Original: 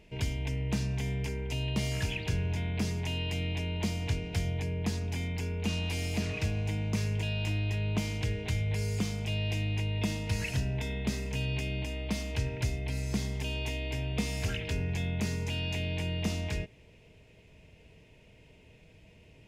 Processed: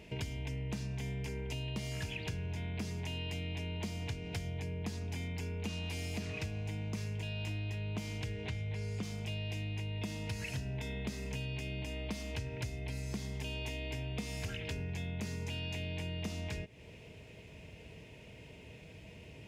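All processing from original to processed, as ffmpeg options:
-filter_complex "[0:a]asettb=1/sr,asplit=3[a][b][c];[a]atrim=end=8.364[d];[b]atrim=start=8.36:end=9.03,asetpts=PTS-STARTPTS,afade=t=in:d=0.004:c=qsin,afade=t=out:st=0.666:d=0.004:c=qsin,lowpass=11k,acrossover=split=4600[e][f];[f]acompressor=threshold=-55dB:ratio=4:attack=1:release=60[g];[e][g]amix=inputs=2:normalize=0[h];[c]atrim=start=9.026[i];[d][h]acrossfade=d=0.004:c1=hsin:c2=qsin[j];[j][i]acrossfade=d=0.004:c1=qsin:c2=hsin,highpass=58,acompressor=threshold=-44dB:ratio=4,volume=5.5dB"

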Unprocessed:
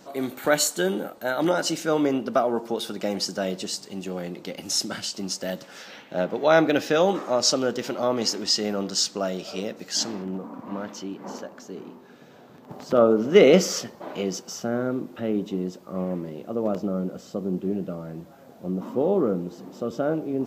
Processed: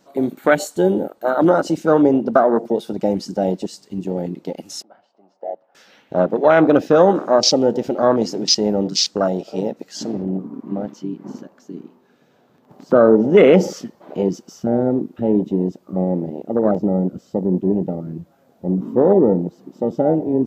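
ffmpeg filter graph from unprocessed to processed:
-filter_complex "[0:a]asettb=1/sr,asplit=3[a][b][c];[a]atrim=end=4.824[d];[b]atrim=start=4.82:end=5.75,asetpts=PTS-STARTPTS,afade=t=in:d=0.004:c=qsin,afade=t=out:st=0.926:d=0.004:c=qsin,bandpass=f=730:t=q:w=3.1,aemphasis=mode=reproduction:type=75fm[e];[c]atrim=start=5.746[f];[d][e]acrossfade=d=0.004:c1=hsin:c2=qsin[g];[g][f]acrossfade=d=0.004:c1=qsin:c2=hsin,afwtdn=0.0562,alimiter=level_in=10dB:limit=-1dB:release=50:level=0:latency=1,volume=-1dB"

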